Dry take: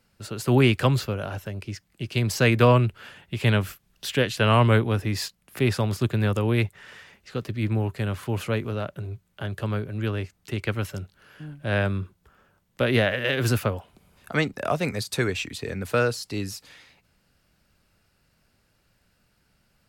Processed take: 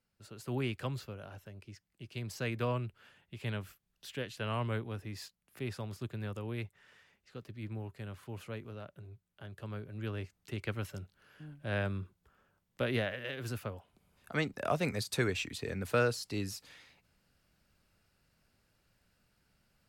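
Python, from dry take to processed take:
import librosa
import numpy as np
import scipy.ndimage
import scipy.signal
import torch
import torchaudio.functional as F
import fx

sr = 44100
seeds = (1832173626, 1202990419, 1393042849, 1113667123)

y = fx.gain(x, sr, db=fx.line((9.51, -16.5), (10.22, -10.0), (12.83, -10.0), (13.42, -17.0), (14.74, -6.5)))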